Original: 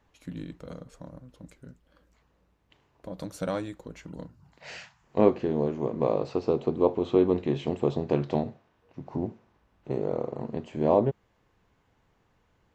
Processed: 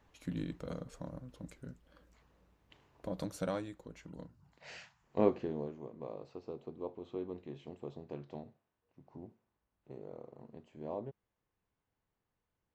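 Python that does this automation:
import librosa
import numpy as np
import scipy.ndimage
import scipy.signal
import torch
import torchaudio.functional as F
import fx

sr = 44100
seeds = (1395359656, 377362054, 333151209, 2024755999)

y = fx.gain(x, sr, db=fx.line((3.11, -0.5), (3.65, -8.0), (5.37, -8.0), (5.92, -19.0)))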